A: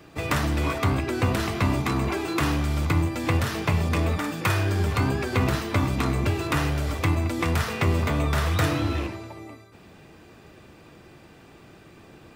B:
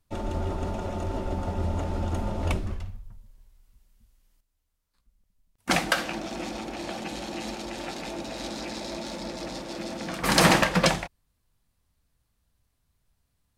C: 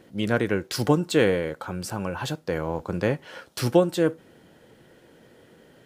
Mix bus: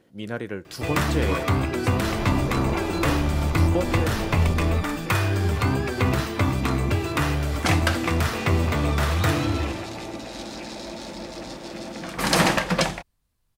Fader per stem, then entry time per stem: +1.0, -0.5, -7.5 dB; 0.65, 1.95, 0.00 s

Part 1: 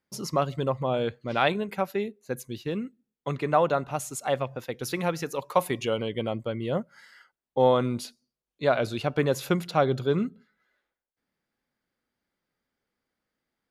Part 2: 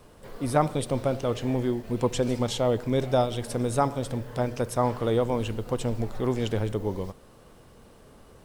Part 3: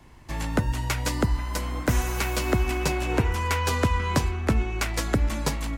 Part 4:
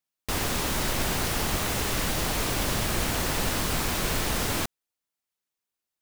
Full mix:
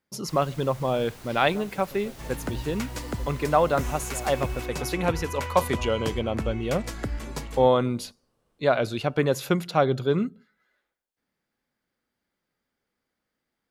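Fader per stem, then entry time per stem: +1.5, -20.0, -8.0, -19.5 dB; 0.00, 1.00, 1.90, 0.00 s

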